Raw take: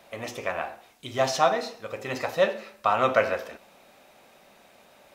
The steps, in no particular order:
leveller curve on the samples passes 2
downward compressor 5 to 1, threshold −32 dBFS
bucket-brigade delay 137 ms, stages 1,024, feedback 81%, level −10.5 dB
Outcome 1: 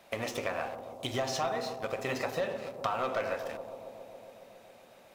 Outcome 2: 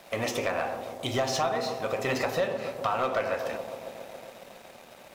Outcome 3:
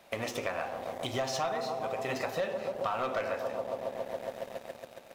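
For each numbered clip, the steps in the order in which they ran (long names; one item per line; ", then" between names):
leveller curve on the samples, then downward compressor, then bucket-brigade delay
downward compressor, then bucket-brigade delay, then leveller curve on the samples
bucket-brigade delay, then leveller curve on the samples, then downward compressor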